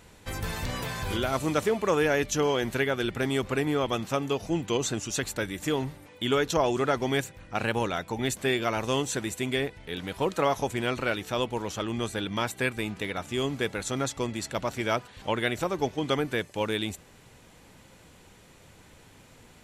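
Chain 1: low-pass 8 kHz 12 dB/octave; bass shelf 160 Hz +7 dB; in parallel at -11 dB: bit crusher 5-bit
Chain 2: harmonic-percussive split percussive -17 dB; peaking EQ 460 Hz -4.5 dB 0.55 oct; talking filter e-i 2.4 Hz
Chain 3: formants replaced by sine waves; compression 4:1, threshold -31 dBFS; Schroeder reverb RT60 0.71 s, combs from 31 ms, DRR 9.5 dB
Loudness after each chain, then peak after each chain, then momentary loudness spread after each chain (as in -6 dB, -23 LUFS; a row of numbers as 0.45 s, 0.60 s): -26.0 LUFS, -43.5 LUFS, -35.0 LUFS; -7.5 dBFS, -22.5 dBFS, -21.5 dBFS; 6 LU, 14 LU, 5 LU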